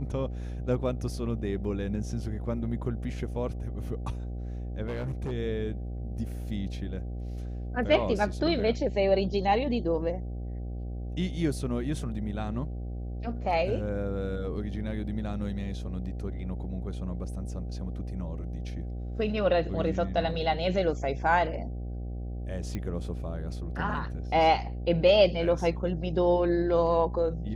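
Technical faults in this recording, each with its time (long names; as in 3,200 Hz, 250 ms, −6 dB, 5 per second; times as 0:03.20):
mains buzz 60 Hz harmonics 13 −35 dBFS
0:04.86–0:05.32: clipping −29 dBFS
0:22.75: click −21 dBFS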